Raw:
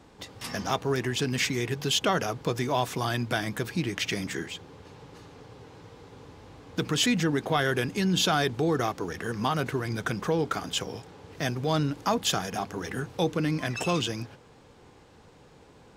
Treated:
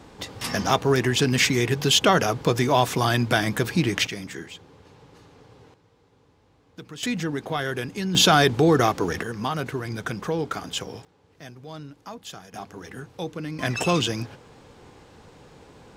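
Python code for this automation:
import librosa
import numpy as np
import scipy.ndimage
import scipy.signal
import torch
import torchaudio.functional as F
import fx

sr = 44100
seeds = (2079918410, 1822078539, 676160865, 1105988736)

y = fx.gain(x, sr, db=fx.steps((0.0, 7.0), (4.07, -3.0), (5.74, -12.5), (7.03, -2.0), (8.15, 8.0), (9.23, 0.0), (11.05, -13.0), (12.54, -5.5), (13.59, 5.0)))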